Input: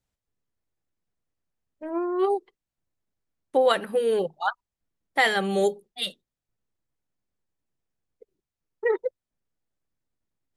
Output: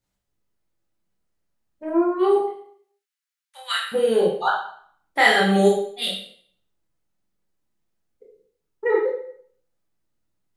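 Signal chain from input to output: 2.36–3.92 HPF 1500 Hz 24 dB/oct; reverb RT60 0.60 s, pre-delay 7 ms, DRR -4 dB

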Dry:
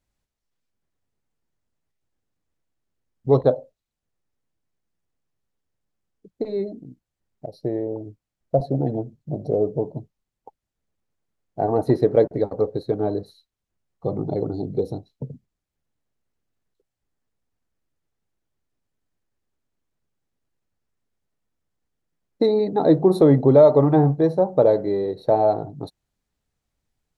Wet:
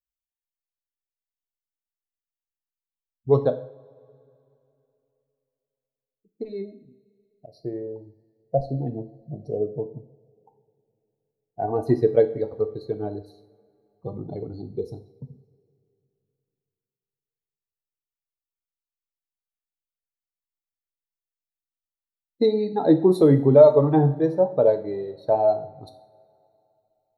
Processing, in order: per-bin expansion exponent 1.5; two-slope reverb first 0.54 s, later 2.9 s, from -21 dB, DRR 8 dB

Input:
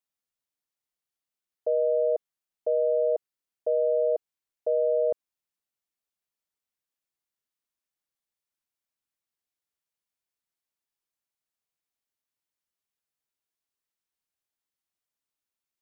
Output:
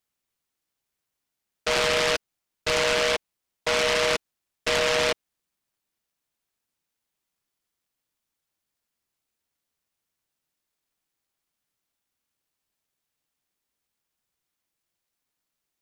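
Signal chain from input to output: bell 540 Hz -14 dB 0.4 oct; noise-modulated delay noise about 2000 Hz, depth 0.27 ms; gain +8.5 dB

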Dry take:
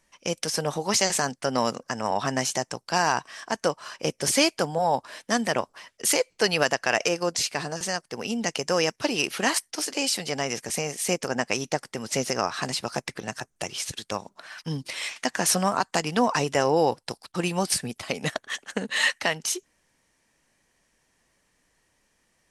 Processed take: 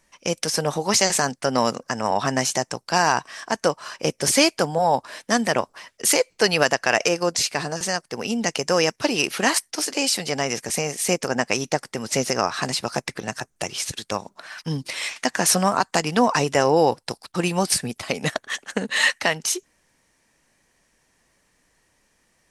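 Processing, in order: bell 3100 Hz -2 dB 0.26 oct; gain +4 dB

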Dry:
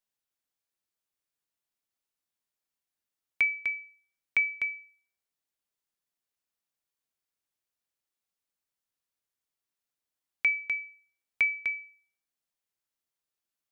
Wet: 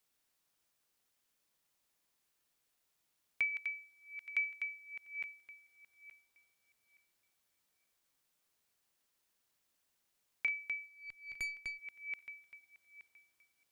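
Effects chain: regenerating reverse delay 0.436 s, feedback 42%, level -8 dB; 3.51–4.69 HPF 1100 Hz 12 dB/oct; requantised 12-bit, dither triangular; 10.86–11.79 tube stage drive 26 dB, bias 0.5; gain -8.5 dB

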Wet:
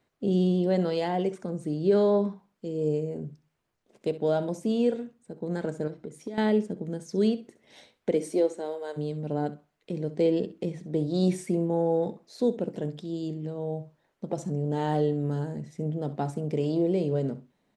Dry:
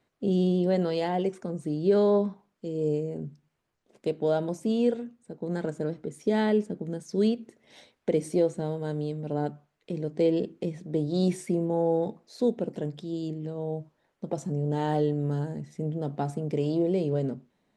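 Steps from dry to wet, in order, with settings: 5.87–6.38 compressor 10:1, threshold -34 dBFS, peak gain reduction 14 dB; 8.11–8.96 HPF 180 Hz -> 480 Hz 24 dB/oct; feedback echo 65 ms, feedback 15%, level -15.5 dB

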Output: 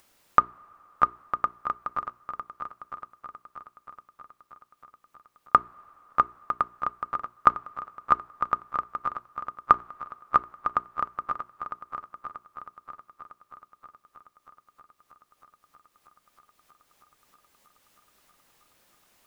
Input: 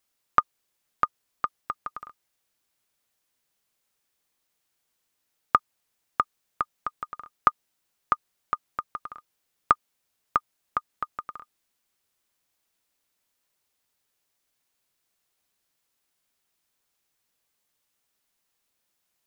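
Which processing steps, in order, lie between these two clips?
high shelf 2300 Hz -8 dB; notches 60/120/180/240/300/360/420 Hz; multi-head echo 0.318 s, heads second and third, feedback 53%, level -11 dB; two-slope reverb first 0.24 s, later 3.5 s, from -18 dB, DRR 18.5 dB; upward compressor, threshold -53 dBFS; gain +3.5 dB

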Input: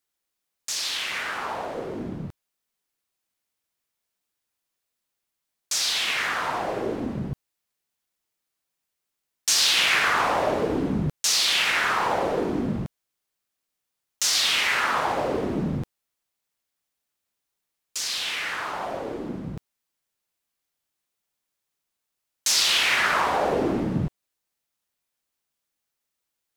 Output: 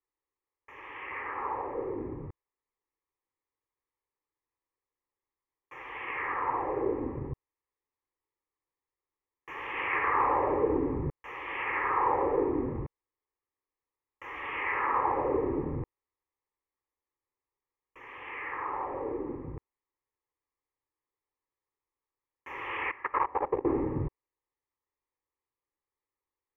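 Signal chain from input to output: inverse Chebyshev low-pass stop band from 3600 Hz, stop band 40 dB; 22.91–23.65 level quantiser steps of 23 dB; fixed phaser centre 990 Hz, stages 8

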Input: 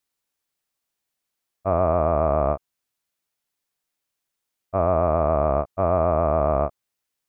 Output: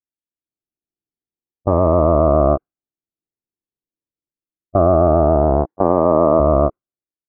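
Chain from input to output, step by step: 5.65–6.4 HPF 180 Hz 12 dB/oct; gate with hold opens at -13 dBFS; low-pass opened by the level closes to 430 Hz, open at -17.5 dBFS; LPF 1400 Hz 24 dB/oct; bell 330 Hz +7 dB 0.57 oct; AGC gain up to 9.5 dB; maximiser +7.5 dB; cascading phaser rising 0.46 Hz; gain +1 dB

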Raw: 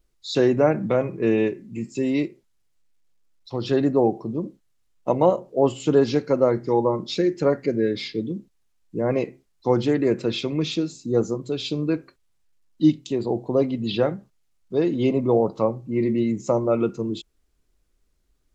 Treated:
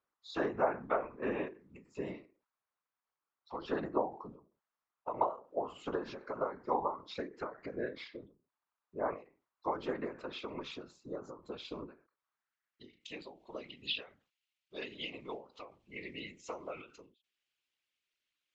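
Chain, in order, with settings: band-pass sweep 1100 Hz -> 2800 Hz, 12.13–13.34; whisperiser; ending taper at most 150 dB/s; gain +1 dB

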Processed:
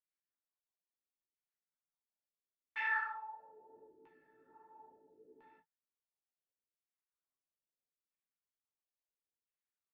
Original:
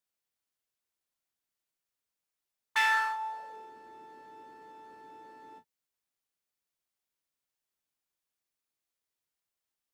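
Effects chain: LFO low-pass saw down 0.74 Hz 370–2500 Hz; chorus voices 6, 1.1 Hz, delay 15 ms, depth 4.1 ms; rotary speaker horn 5 Hz, later 1.2 Hz, at 1.89; gain -8 dB

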